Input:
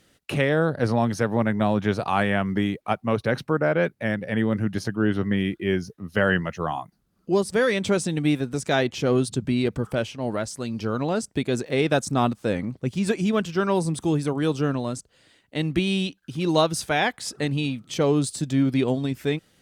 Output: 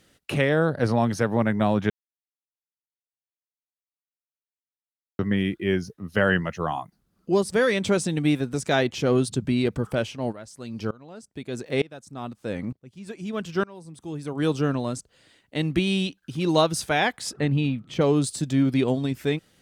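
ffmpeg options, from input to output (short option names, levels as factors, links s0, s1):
-filter_complex "[0:a]asplit=3[s0][s1][s2];[s0]afade=t=out:st=10.31:d=0.02[s3];[s1]aeval=exprs='val(0)*pow(10,-24*if(lt(mod(-1.1*n/s,1),2*abs(-1.1)/1000),1-mod(-1.1*n/s,1)/(2*abs(-1.1)/1000),(mod(-1.1*n/s,1)-2*abs(-1.1)/1000)/(1-2*abs(-1.1)/1000))/20)':c=same,afade=t=in:st=10.31:d=0.02,afade=t=out:st=14.38:d=0.02[s4];[s2]afade=t=in:st=14.38:d=0.02[s5];[s3][s4][s5]amix=inputs=3:normalize=0,asettb=1/sr,asplit=3[s6][s7][s8];[s6]atrim=end=17.334[s9];[s7]atrim=start=17.33:end=18.01,asetpts=PTS-STARTPTS,afade=t=in:d=0.004:c=qsin,afade=t=out:st=0.676:d=0.004:c=qsin,bass=f=250:g=4,treble=f=4000:g=-13[s10];[s8]atrim=start=18.006[s11];[s9][s10]acrossfade=d=0.004:c1=hsin:c2=qsin[s12];[s12][s11]acrossfade=d=0.004:c1=qsin:c2=hsin,asplit=3[s13][s14][s15];[s13]atrim=end=1.9,asetpts=PTS-STARTPTS,afade=t=out:st=1.896:d=0.004:c=hsin[s16];[s14]atrim=start=1.9:end=5.19,asetpts=PTS-STARTPTS,volume=0[s17];[s15]atrim=start=5.19,asetpts=PTS-STARTPTS,afade=t=in:d=0.004:c=hsin[s18];[s16][s17][s18]concat=n=3:v=0:a=1"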